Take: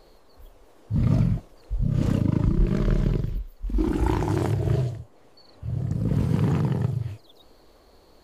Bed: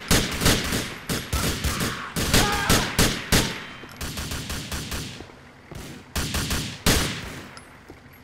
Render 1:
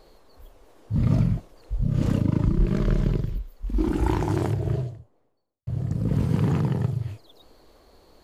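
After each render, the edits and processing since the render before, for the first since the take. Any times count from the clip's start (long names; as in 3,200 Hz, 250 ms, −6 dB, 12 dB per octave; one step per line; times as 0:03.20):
0:04.24–0:05.67: fade out and dull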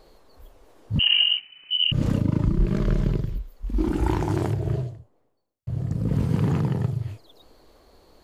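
0:00.99–0:01.92: voice inversion scrambler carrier 3,000 Hz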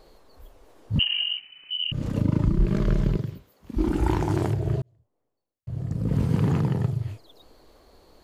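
0:01.03–0:02.16: downward compressor 1.5 to 1, threshold −35 dBFS
0:03.16–0:03.77: high-pass filter 100 Hz 24 dB per octave
0:04.82–0:06.22: fade in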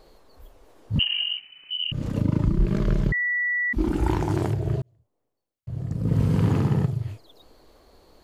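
0:03.12–0:03.73: beep over 1,950 Hz −21.5 dBFS
0:05.97–0:06.85: flutter between parallel walls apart 11.3 metres, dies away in 0.84 s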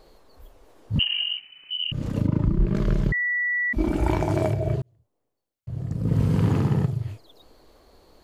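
0:02.27–0:02.75: high-shelf EQ 3,300 Hz −10.5 dB
0:03.53–0:04.74: hollow resonant body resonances 630/2,300 Hz, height 15 dB, ringing for 55 ms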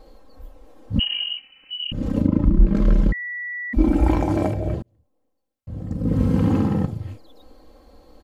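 tilt shelving filter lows +4 dB, about 1,100 Hz
comb filter 3.8 ms, depth 75%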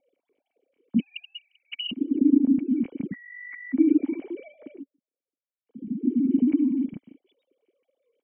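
three sine waves on the formant tracks
formant resonators in series i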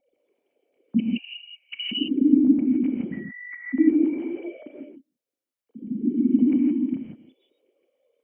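reverb whose tail is shaped and stops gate 190 ms rising, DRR −0.5 dB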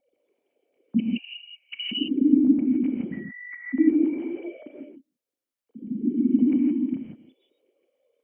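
level −1 dB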